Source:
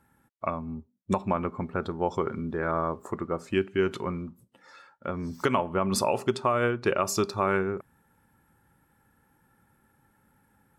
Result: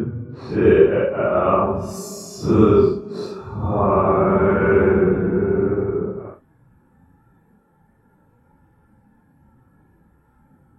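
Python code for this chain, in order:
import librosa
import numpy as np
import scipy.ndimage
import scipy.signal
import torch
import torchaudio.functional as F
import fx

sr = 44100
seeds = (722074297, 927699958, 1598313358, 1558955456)

y = fx.tilt_shelf(x, sr, db=9.5, hz=1500.0)
y = fx.paulstretch(y, sr, seeds[0], factor=6.0, window_s=0.05, from_s=6.76)
y = y * librosa.db_to_amplitude(2.0)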